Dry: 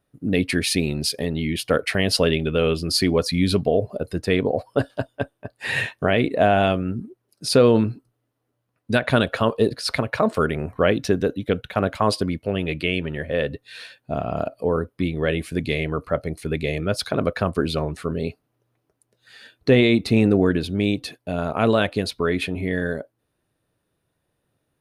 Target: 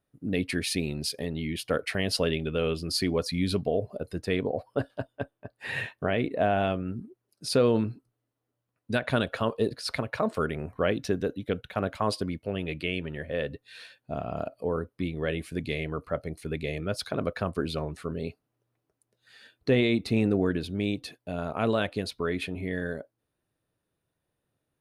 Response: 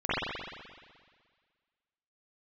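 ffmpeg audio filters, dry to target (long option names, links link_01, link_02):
-filter_complex "[0:a]asettb=1/sr,asplit=3[link_01][link_02][link_03];[link_01]atrim=end=4.474[link_04];[link_02]atrim=start=4.47:end=6.87,asetpts=PTS-STARTPTS,afade=type=in:duration=0.004:curve=qsin,afade=type=out:start_time=2.396:duration=0.004:curve=qsin,equalizer=frequency=7300:width_type=o:width=1.9:gain=-6[link_05];[link_03]atrim=start=6.866[link_06];[link_04][link_05]acrossfade=duration=0.004:curve1=hsin:curve2=qsin[link_07];[link_07][link_06]acrossfade=duration=0.004:curve1=qsin:curve2=hsin,volume=-7.5dB"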